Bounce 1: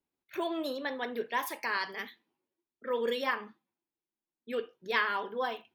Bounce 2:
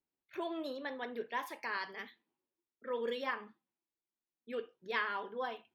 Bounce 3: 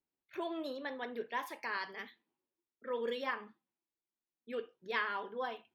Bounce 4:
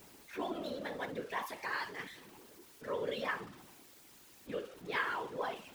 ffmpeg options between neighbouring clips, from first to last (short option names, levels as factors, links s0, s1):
-af "highshelf=f=7400:g=-12,volume=0.531"
-af anull
-af "aeval=exprs='val(0)+0.5*0.00398*sgn(val(0))':c=same,afftfilt=real='hypot(re,im)*cos(2*PI*random(0))':imag='hypot(re,im)*sin(2*PI*random(1))':win_size=512:overlap=0.75,volume=1.88"